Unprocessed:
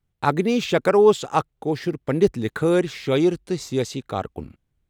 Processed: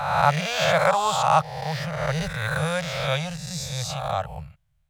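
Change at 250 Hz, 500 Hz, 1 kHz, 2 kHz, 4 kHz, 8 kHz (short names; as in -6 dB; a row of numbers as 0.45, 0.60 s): -10.5, -7.0, +4.5, +5.0, +4.5, +5.0 dB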